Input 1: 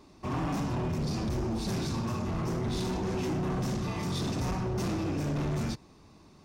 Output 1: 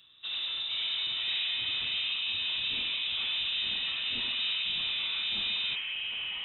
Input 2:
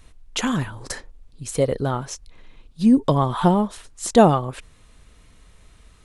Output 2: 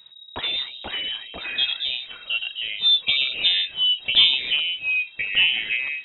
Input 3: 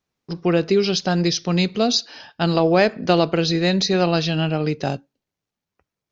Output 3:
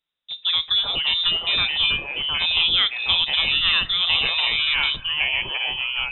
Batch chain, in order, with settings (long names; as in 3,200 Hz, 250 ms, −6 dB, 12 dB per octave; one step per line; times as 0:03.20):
voice inversion scrambler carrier 3,800 Hz
delay with pitch and tempo change per echo 416 ms, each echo −3 semitones, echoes 2
level −4 dB